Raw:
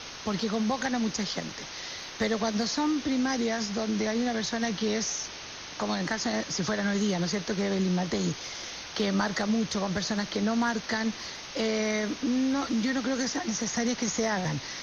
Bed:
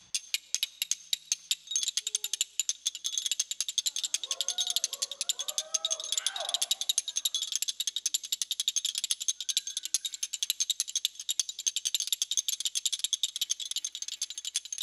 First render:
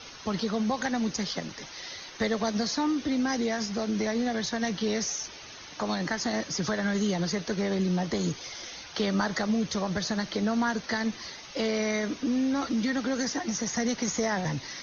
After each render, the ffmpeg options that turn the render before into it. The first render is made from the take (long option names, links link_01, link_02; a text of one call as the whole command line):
ffmpeg -i in.wav -af "afftdn=noise_reduction=9:noise_floor=-42" out.wav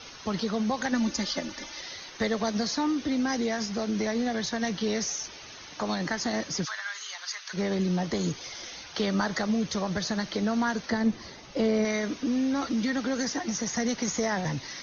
ffmpeg -i in.wav -filter_complex "[0:a]asettb=1/sr,asplit=3[link_01][link_02][link_03];[link_01]atrim=end=0.924[link_04];[link_02]atrim=start=0.92:end=1.81,asetpts=PTS-STARTPTS,afade=type=in:duration=0.004:curve=qsin,afade=type=out:start_time=0.886:duration=0.004:curve=qsin,aecho=1:1:3.4:0.77,atrim=end_sample=39249[link_05];[link_03]atrim=start=1.806[link_06];[link_04][link_05]acrossfade=duration=0.004:curve1=hsin:curve2=qsin[link_07];[link_07][link_06]acrossfade=duration=0.004:curve1=qsin:curve2=hsin,asplit=3[link_08][link_09][link_10];[link_08]afade=type=out:start_time=6.64:duration=0.02[link_11];[link_09]highpass=frequency=1100:width=0.5412,highpass=frequency=1100:width=1.3066,afade=type=in:start_time=6.64:duration=0.02,afade=type=out:start_time=7.53:duration=0.02[link_12];[link_10]afade=type=in:start_time=7.53:duration=0.02[link_13];[link_11][link_12][link_13]amix=inputs=3:normalize=0,asettb=1/sr,asplit=3[link_14][link_15][link_16];[link_14]atrim=end=10.904[link_17];[link_15]atrim=start=10.9:end=11.85,asetpts=PTS-STARTPTS,afade=type=in:duration=0.004:curve=qsin,afade=type=out:start_time=0.946:duration=0.004:curve=qsin,tiltshelf=frequency=840:gain=6[link_18];[link_16]atrim=start=11.846[link_19];[link_17][link_18]acrossfade=duration=0.004:curve1=hsin:curve2=qsin[link_20];[link_20][link_19]acrossfade=duration=0.004:curve1=qsin:curve2=hsin" out.wav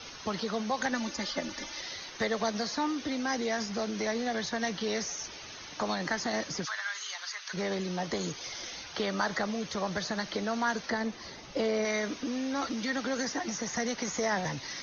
ffmpeg -i in.wav -filter_complex "[0:a]acrossover=split=410|2800[link_01][link_02][link_03];[link_01]acompressor=threshold=-36dB:ratio=6[link_04];[link_03]alimiter=level_in=5dB:limit=-24dB:level=0:latency=1:release=125,volume=-5dB[link_05];[link_04][link_02][link_05]amix=inputs=3:normalize=0" out.wav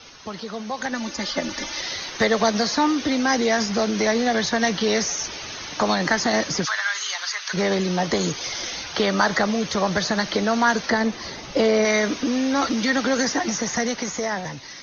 ffmpeg -i in.wav -af "dynaudnorm=framelen=190:gausssize=13:maxgain=11dB" out.wav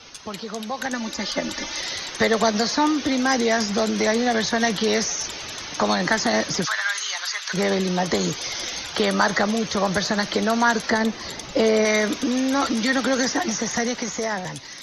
ffmpeg -i in.wav -i bed.wav -filter_complex "[1:a]volume=-9dB[link_01];[0:a][link_01]amix=inputs=2:normalize=0" out.wav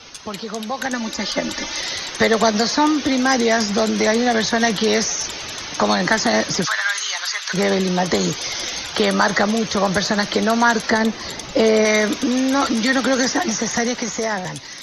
ffmpeg -i in.wav -af "volume=3.5dB,alimiter=limit=-3dB:level=0:latency=1" out.wav